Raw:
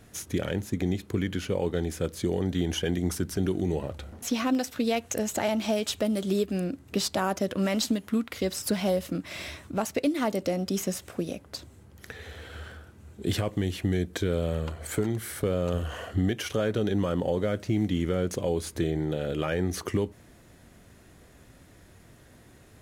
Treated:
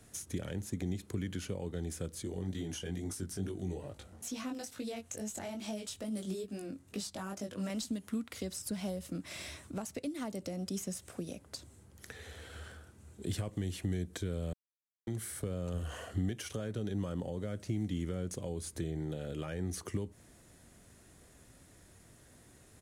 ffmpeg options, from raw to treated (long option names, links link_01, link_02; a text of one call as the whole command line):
ffmpeg -i in.wav -filter_complex "[0:a]asettb=1/sr,asplit=3[link_01][link_02][link_03];[link_01]atrim=end=2.234[link_04];[link_02]atrim=start=2.23:end=7.7,asetpts=PTS-STARTPTS,afade=type=in:duration=0.004:curve=qsin,afade=type=out:start_time=5.466:duration=0.004:curve=qsin,flanger=delay=19:depth=3.1:speed=2.3[link_05];[link_03]atrim=start=7.696[link_06];[link_04][link_05]acrossfade=duration=0.004:curve1=hsin:curve2=qsin[link_07];[link_07][link_06]acrossfade=duration=0.004:curve1=qsin:curve2=hsin,asplit=3[link_08][link_09][link_10];[link_08]atrim=end=14.53,asetpts=PTS-STARTPTS,afade=type=out:start_time=14.526:duration=0.004:curve=hsin[link_11];[link_09]atrim=start=14.53:end=15.07,asetpts=PTS-STARTPTS,volume=0[link_12];[link_10]atrim=start=15.07,asetpts=PTS-STARTPTS,afade=type=in:duration=0.004:curve=hsin[link_13];[link_11][link_12][link_13]concat=n=3:v=0:a=1,firequalizer=gain_entry='entry(2600,0);entry(9100,10);entry(13000,1)':delay=0.05:min_phase=1,acrossover=split=220[link_14][link_15];[link_15]acompressor=threshold=-34dB:ratio=4[link_16];[link_14][link_16]amix=inputs=2:normalize=0,volume=-6.5dB" out.wav